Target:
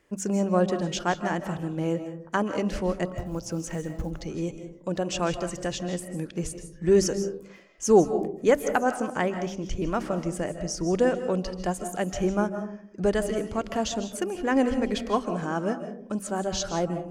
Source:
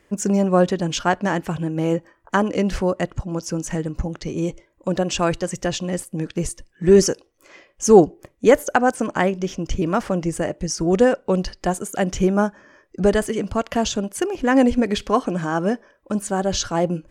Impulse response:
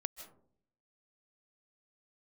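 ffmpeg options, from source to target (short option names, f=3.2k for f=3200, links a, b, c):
-filter_complex "[0:a]asettb=1/sr,asplit=3[a][b][c];[a]atrim=end=3.064[d];[b]atrim=start=3.06:end=4.11,asetpts=PTS-STARTPTS,afade=t=in:d=0.004:c=qsin,afade=t=out:st=1.046:d=0.004:c=qsin,acrusher=bits=8:mode=log:mix=0:aa=0.000001[e];[c]atrim=start=4.106[f];[d][e]acrossfade=d=0.004:c1=hsin:c2=qsin[g];[g][f]acrossfade=d=0.004:c1=qsin:c2=hsin,bandreject=f=48.22:t=h:w=4,bandreject=f=96.44:t=h:w=4,bandreject=f=144.66:t=h:w=4,bandreject=f=192.88:t=h:w=4,bandreject=f=241.1:t=h:w=4,bandreject=f=289.32:t=h:w=4[h];[1:a]atrim=start_sample=2205[i];[h][i]afir=irnorm=-1:irlink=0,volume=-5dB"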